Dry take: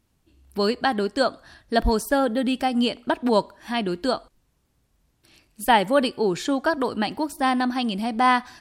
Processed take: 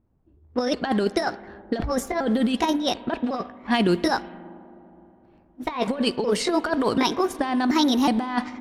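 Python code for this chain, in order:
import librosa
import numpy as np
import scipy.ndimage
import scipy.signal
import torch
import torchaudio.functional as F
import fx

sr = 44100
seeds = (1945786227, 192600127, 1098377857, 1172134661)

y = fx.pitch_trill(x, sr, semitones=3.5, every_ms=367)
y = fx.leveller(y, sr, passes=1)
y = fx.over_compress(y, sr, threshold_db=-21.0, ratio=-0.5)
y = fx.rev_spring(y, sr, rt60_s=3.7, pass_ms=(40, 52), chirp_ms=30, drr_db=16.5)
y = fx.env_lowpass(y, sr, base_hz=800.0, full_db=-17.5)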